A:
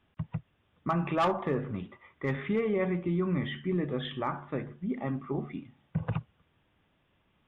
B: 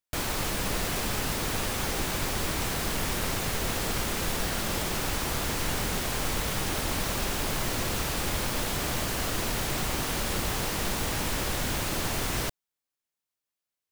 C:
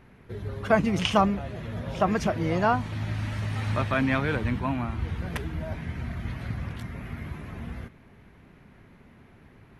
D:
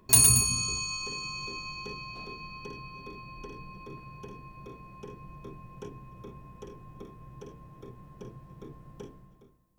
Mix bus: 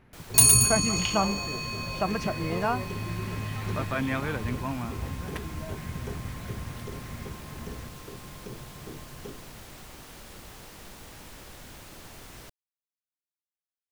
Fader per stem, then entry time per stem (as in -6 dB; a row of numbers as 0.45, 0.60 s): -11.0, -16.5, -4.5, +2.0 dB; 0.00, 0.00, 0.00, 0.25 s